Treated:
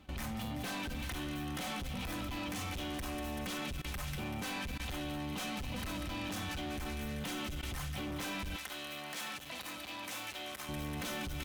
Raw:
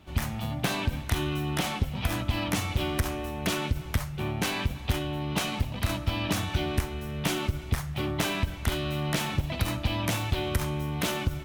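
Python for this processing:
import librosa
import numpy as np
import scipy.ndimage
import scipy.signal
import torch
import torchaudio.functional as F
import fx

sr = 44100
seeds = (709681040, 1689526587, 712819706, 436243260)

y = x + 0.53 * np.pad(x, (int(3.9 * sr / 1000.0), 0))[:len(x)]
y = fx.echo_wet_highpass(y, sr, ms=192, feedback_pct=68, hz=1700.0, wet_db=-11.0)
y = 10.0 ** (-29.0 / 20.0) * np.tanh(y / 10.0 ** (-29.0 / 20.0))
y = fx.level_steps(y, sr, step_db=20)
y = fx.highpass(y, sr, hz=770.0, slope=6, at=(8.56, 10.69))
y = y * 10.0 ** (1.0 / 20.0)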